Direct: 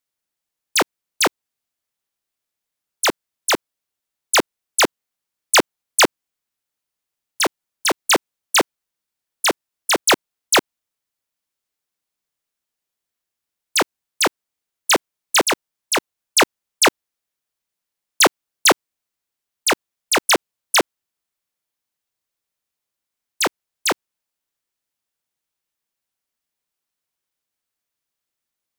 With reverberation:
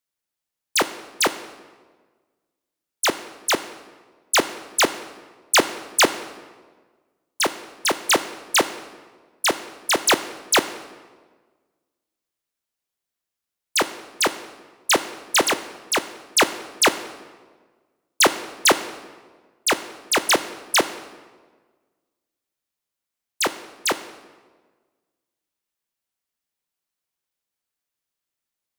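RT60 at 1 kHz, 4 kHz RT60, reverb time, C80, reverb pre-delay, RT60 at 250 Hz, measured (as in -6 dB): 1.4 s, 1.0 s, 1.5 s, 15.0 dB, 11 ms, 1.6 s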